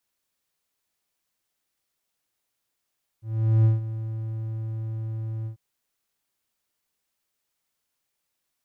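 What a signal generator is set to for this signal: ADSR triangle 111 Hz, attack 429 ms, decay 152 ms, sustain -14 dB, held 2.24 s, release 104 ms -12 dBFS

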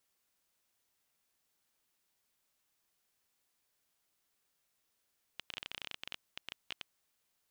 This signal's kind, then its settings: random clicks 16 per s -23.5 dBFS 1.61 s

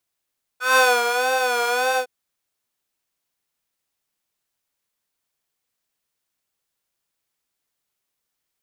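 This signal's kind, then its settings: synth patch with vibrato B4, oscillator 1 square, interval -12 st, detune 26 cents, oscillator 2 level -2.5 dB, filter highpass, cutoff 630 Hz, Q 5.9, filter envelope 1 oct, attack 168 ms, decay 0.26 s, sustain -7.5 dB, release 0.09 s, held 1.37 s, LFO 1.7 Hz, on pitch 74 cents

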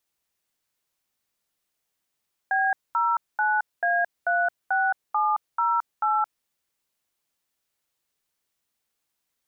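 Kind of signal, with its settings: DTMF "B09A36708", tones 220 ms, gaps 219 ms, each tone -22.5 dBFS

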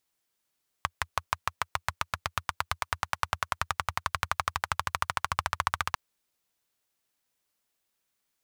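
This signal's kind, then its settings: single-cylinder engine model, changing speed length 5.10 s, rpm 700, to 1800, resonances 85/1100 Hz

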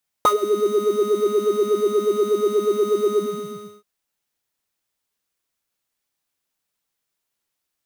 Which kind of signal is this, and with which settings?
synth patch with filter wobble G#4, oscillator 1 triangle, oscillator 2 square, interval +19 st, noise -17 dB, filter highpass, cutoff 110 Hz, Q 6.1, filter envelope 3 oct, filter decay 0.24 s, filter sustain 50%, attack 1.1 ms, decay 0.09 s, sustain -14 dB, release 0.68 s, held 2.90 s, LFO 8.3 Hz, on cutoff 0.5 oct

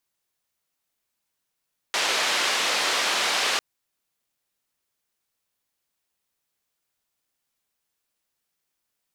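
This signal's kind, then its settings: noise band 450–4300 Hz, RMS -24 dBFS 1.65 s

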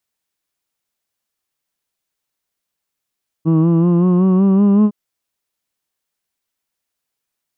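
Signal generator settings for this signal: formant vowel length 1.46 s, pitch 158 Hz, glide +5 st, vibrato depth 0.45 st, F1 270 Hz, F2 1.1 kHz, F3 2.8 kHz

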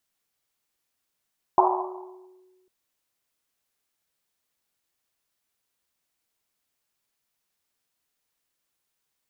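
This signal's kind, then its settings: Risset drum, pitch 370 Hz, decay 1.61 s, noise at 870 Hz, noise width 390 Hz, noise 65%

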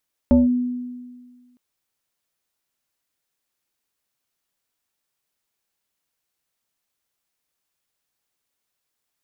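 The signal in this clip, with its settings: FM tone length 1.26 s, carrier 247 Hz, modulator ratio 1.29, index 0.79, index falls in 0.17 s linear, decay 1.64 s, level -9 dB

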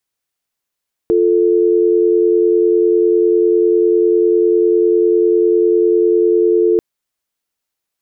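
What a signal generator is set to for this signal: call progress tone dial tone, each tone -12 dBFS 5.69 s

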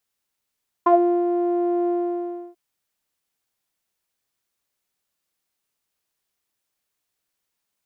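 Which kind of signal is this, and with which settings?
synth note saw F4 12 dB/octave, low-pass 530 Hz, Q 6.8, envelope 1 oct, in 0.13 s, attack 8.4 ms, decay 0.37 s, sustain -5 dB, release 0.67 s, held 1.02 s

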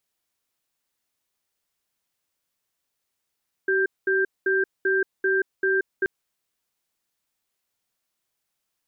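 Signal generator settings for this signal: cadence 383 Hz, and 1.58 kHz, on 0.18 s, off 0.21 s, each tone -21.5 dBFS 2.38 s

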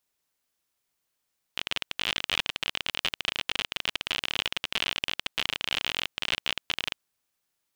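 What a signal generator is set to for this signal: random clicks 42 per s -10.5 dBFS 5.44 s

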